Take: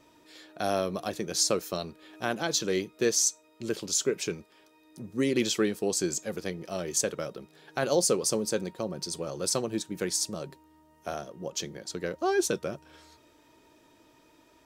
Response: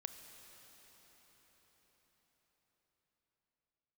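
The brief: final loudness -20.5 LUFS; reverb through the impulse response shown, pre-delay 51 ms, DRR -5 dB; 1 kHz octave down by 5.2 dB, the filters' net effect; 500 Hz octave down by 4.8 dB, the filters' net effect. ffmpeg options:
-filter_complex "[0:a]equalizer=f=500:t=o:g=-5,equalizer=f=1000:t=o:g=-5.5,asplit=2[s0][s1];[1:a]atrim=start_sample=2205,adelay=51[s2];[s1][s2]afir=irnorm=-1:irlink=0,volume=2.66[s3];[s0][s3]amix=inputs=2:normalize=0,volume=1.78"

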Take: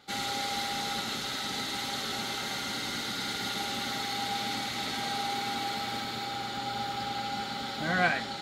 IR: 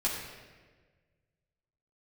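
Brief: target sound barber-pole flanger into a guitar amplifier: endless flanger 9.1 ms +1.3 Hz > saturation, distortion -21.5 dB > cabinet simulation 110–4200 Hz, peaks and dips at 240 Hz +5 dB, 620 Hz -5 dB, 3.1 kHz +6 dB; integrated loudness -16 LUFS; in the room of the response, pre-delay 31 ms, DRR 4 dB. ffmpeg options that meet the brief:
-filter_complex "[0:a]asplit=2[s0][s1];[1:a]atrim=start_sample=2205,adelay=31[s2];[s1][s2]afir=irnorm=-1:irlink=0,volume=0.282[s3];[s0][s3]amix=inputs=2:normalize=0,asplit=2[s4][s5];[s5]adelay=9.1,afreqshift=1.3[s6];[s4][s6]amix=inputs=2:normalize=1,asoftclip=threshold=0.0708,highpass=110,equalizer=f=240:t=q:w=4:g=5,equalizer=f=620:t=q:w=4:g=-5,equalizer=f=3100:t=q:w=4:g=6,lowpass=f=4200:w=0.5412,lowpass=f=4200:w=1.3066,volume=7.94"

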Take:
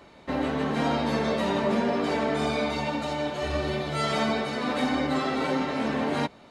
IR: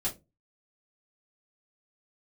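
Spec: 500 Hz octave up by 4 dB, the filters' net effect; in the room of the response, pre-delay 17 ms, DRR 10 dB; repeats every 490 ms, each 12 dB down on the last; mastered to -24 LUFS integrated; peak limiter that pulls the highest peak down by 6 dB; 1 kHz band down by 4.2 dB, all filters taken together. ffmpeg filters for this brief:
-filter_complex "[0:a]equalizer=f=500:t=o:g=7.5,equalizer=f=1000:t=o:g=-9,alimiter=limit=0.133:level=0:latency=1,aecho=1:1:490|980|1470:0.251|0.0628|0.0157,asplit=2[s0][s1];[1:a]atrim=start_sample=2205,adelay=17[s2];[s1][s2]afir=irnorm=-1:irlink=0,volume=0.2[s3];[s0][s3]amix=inputs=2:normalize=0,volume=1.33"

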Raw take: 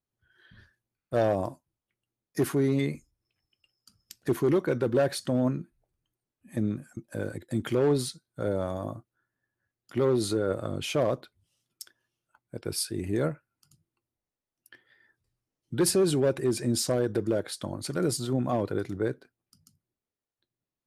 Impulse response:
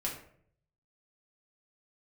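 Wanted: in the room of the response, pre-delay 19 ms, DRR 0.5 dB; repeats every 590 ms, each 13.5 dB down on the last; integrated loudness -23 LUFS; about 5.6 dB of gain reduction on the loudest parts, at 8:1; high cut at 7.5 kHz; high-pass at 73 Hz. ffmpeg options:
-filter_complex "[0:a]highpass=73,lowpass=7500,acompressor=threshold=0.0562:ratio=8,aecho=1:1:590|1180:0.211|0.0444,asplit=2[s0][s1];[1:a]atrim=start_sample=2205,adelay=19[s2];[s1][s2]afir=irnorm=-1:irlink=0,volume=0.668[s3];[s0][s3]amix=inputs=2:normalize=0,volume=2.11"

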